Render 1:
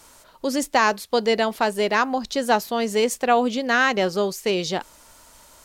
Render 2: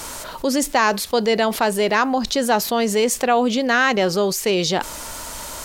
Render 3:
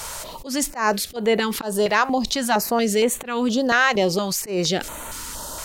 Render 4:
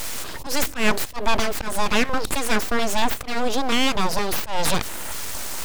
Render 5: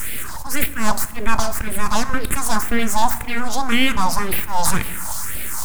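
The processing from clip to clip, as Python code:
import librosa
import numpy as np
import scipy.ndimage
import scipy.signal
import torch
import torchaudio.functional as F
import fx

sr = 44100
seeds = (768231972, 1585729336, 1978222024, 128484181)

y1 = fx.env_flatten(x, sr, amount_pct=50)
y2 = fx.auto_swell(y1, sr, attack_ms=138.0)
y2 = fx.filter_held_notch(y2, sr, hz=4.3, low_hz=290.0, high_hz=5100.0)
y3 = fx.rider(y2, sr, range_db=3, speed_s=0.5)
y3 = np.abs(y3)
y3 = y3 * librosa.db_to_amplitude(2.5)
y4 = fx.phaser_stages(y3, sr, stages=4, low_hz=370.0, high_hz=1000.0, hz=1.9, feedback_pct=35)
y4 = fx.rev_fdn(y4, sr, rt60_s=1.3, lf_ratio=1.3, hf_ratio=0.7, size_ms=78.0, drr_db=12.5)
y4 = y4 * librosa.db_to_amplitude(5.0)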